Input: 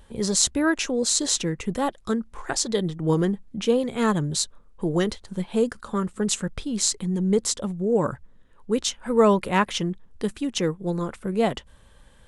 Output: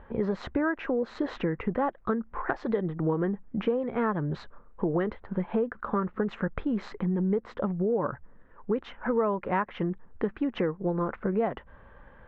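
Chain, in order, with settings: low-pass 1.8 kHz 24 dB/octave; bass shelf 290 Hz -8 dB; compression 6:1, threshold -32 dBFS, peak gain reduction 15.5 dB; trim +7.5 dB

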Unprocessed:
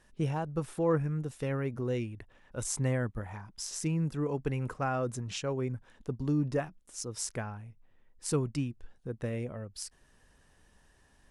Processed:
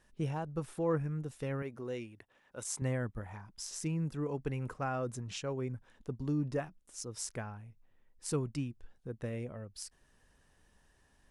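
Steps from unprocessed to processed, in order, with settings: 1.62–2.82 s: high-pass 330 Hz 6 dB/octave; trim -4 dB

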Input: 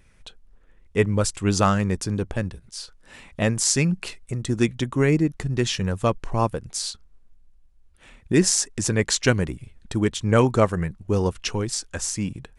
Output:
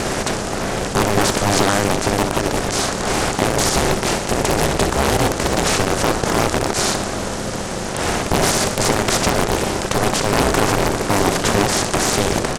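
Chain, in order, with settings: spectral levelling over time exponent 0.2; peaking EQ 120 Hz -2.5 dB; on a send: feedback delay 62 ms, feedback 57%, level -10 dB; on the sum: ring modulator 200 Hz; peak limiter -2.5 dBFS, peak gain reduction 9 dB; loudspeaker Doppler distortion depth 0.91 ms

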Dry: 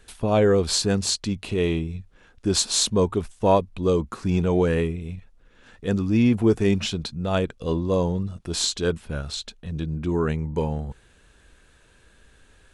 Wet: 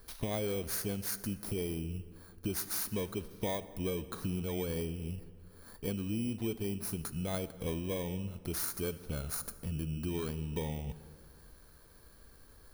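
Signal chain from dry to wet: bit-reversed sample order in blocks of 16 samples; compression 6:1, threshold -31 dBFS, peak gain reduction 17 dB; on a send: reverberation RT60 2.2 s, pre-delay 37 ms, DRR 14 dB; on the sum: trim -2.5 dB

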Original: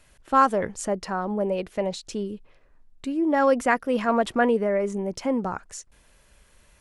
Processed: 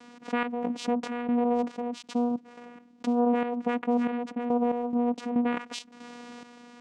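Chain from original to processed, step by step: low-pass that closes with the level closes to 1.4 kHz, closed at -21.5 dBFS; dynamic bell 2.6 kHz, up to +7 dB, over -50 dBFS, Q 2.2; peak limiter -18.5 dBFS, peak gain reduction 10.5 dB; vocoder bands 4, saw 241 Hz; trance gate ".x.xx.xx..x" 70 bpm -12 dB; level flattener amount 50%

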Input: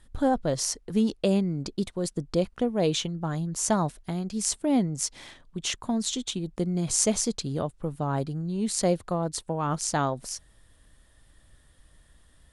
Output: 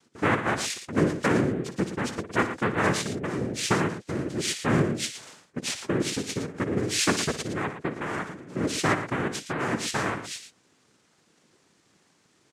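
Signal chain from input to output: knee-point frequency compression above 3 kHz 1.5:1; 8.00–8.54 s: high-pass 190 Hz -> 520 Hz 12 dB/octave; noise-vocoded speech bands 3; loudspeakers at several distances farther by 20 m -12 dB, 39 m -11 dB

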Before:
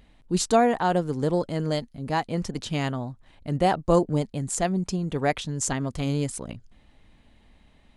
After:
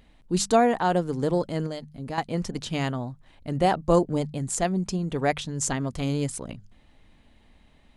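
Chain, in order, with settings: hum notches 50/100/150/200 Hz; 1.66–2.18 s: compression 4:1, threshold -31 dBFS, peak gain reduction 9 dB

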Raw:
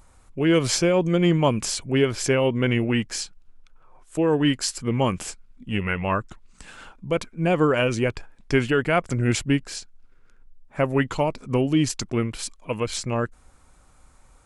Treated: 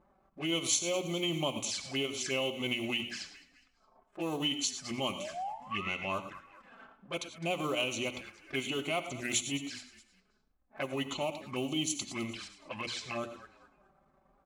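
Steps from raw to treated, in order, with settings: companding laws mixed up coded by mu; level-controlled noise filter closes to 500 Hz, open at -17 dBFS; treble shelf 8.4 kHz -9.5 dB; hum notches 60/120/180/240/300/360 Hz; transient shaper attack -10 dB, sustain -6 dB; painted sound rise, 5.18–5.91 s, 560–1400 Hz -35 dBFS; frequency-shifting echo 208 ms, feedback 39%, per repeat -31 Hz, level -21 dB; touch-sensitive flanger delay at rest 6.6 ms, full sweep at -25 dBFS; tilt EQ +4.5 dB/octave; comb of notches 470 Hz; gated-style reverb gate 130 ms rising, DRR 11 dB; compression 2:1, threshold -37 dBFS, peak gain reduction 11 dB; trim +2.5 dB

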